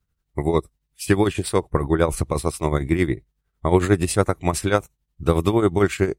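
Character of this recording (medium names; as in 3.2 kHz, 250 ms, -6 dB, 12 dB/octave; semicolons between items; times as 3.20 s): tremolo triangle 11 Hz, depth 75%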